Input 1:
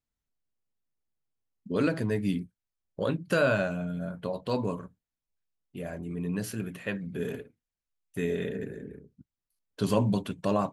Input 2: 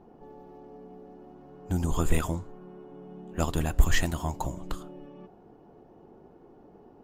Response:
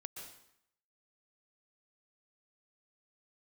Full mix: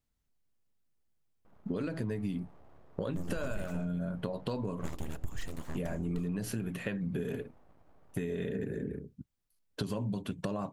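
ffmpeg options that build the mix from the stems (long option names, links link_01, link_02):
-filter_complex "[0:a]acompressor=threshold=-35dB:ratio=6,volume=3dB[link_01];[1:a]acontrast=39,aeval=exprs='abs(val(0))':channel_layout=same,adelay=1450,volume=-16dB[link_02];[link_01][link_02]amix=inputs=2:normalize=0,lowshelf=frequency=360:gain=5,acompressor=threshold=-30dB:ratio=6"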